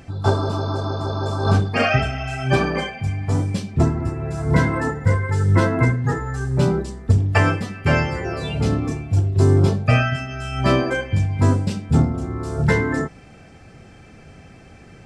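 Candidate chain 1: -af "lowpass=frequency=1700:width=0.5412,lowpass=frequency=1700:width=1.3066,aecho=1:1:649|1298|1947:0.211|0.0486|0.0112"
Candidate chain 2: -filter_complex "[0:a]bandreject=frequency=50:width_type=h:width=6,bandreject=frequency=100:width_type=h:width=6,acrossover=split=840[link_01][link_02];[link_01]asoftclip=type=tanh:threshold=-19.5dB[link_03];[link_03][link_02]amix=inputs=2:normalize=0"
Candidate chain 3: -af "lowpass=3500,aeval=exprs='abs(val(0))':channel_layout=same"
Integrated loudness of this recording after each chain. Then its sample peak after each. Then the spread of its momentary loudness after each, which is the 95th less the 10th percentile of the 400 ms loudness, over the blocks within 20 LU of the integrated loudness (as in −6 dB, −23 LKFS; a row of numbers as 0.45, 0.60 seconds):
−20.5, −24.5, −25.0 LKFS; −2.5, −6.0, −2.5 dBFS; 9, 6, 8 LU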